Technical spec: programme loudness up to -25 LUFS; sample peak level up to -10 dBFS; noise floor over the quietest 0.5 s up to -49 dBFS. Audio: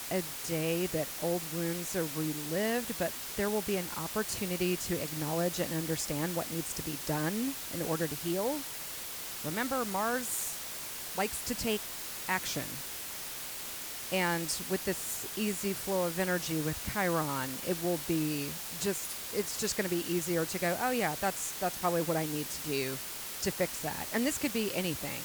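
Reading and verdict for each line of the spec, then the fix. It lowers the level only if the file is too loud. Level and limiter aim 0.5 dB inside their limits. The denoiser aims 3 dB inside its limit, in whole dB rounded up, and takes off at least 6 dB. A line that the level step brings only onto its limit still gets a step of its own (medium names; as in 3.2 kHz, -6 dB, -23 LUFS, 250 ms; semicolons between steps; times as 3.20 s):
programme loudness -33.0 LUFS: pass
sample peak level -16.5 dBFS: pass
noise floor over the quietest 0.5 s -41 dBFS: fail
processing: noise reduction 11 dB, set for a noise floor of -41 dBFS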